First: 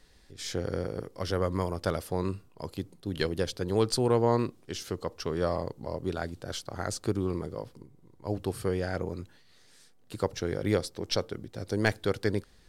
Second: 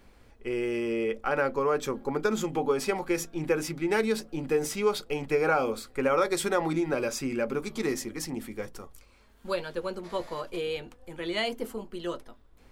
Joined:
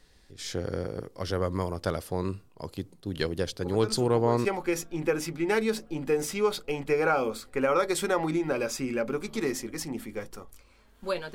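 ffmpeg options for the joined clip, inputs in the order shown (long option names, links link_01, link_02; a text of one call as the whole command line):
ffmpeg -i cue0.wav -i cue1.wav -filter_complex "[1:a]asplit=2[link_01][link_02];[0:a]apad=whole_dur=11.34,atrim=end=11.34,atrim=end=4.452[link_03];[link_02]atrim=start=2.868:end=9.76[link_04];[link_01]atrim=start=2.03:end=2.87,asetpts=PTS-STARTPTS,volume=-10dB,afade=type=in:duration=0.004:curve=hsin,afade=type=out:start_time=0.836:duration=0.004:curve=hsin,adelay=159201S[link_05];[link_03][link_04]acrossfade=duration=0.004:curve1=hsin:curve2=hsin[link_06];[link_06][link_05]amix=inputs=2:normalize=0" out.wav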